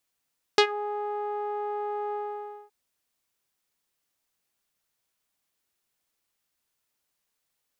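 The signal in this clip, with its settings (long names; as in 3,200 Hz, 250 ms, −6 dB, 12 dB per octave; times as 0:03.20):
subtractive voice saw G#4 12 dB per octave, low-pass 930 Hz, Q 2.3, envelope 2.5 octaves, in 0.15 s, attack 2 ms, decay 0.08 s, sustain −18 dB, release 0.57 s, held 1.55 s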